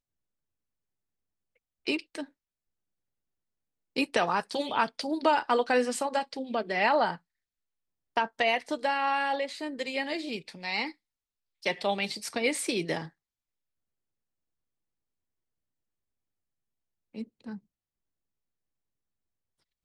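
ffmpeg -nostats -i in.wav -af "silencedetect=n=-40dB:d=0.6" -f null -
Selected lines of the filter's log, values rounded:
silence_start: 0.00
silence_end: 1.87 | silence_duration: 1.87
silence_start: 2.24
silence_end: 3.96 | silence_duration: 1.72
silence_start: 7.16
silence_end: 8.17 | silence_duration: 1.01
silence_start: 10.91
silence_end: 11.63 | silence_duration: 0.72
silence_start: 13.07
silence_end: 17.15 | silence_duration: 4.07
silence_start: 17.57
silence_end: 19.84 | silence_duration: 2.27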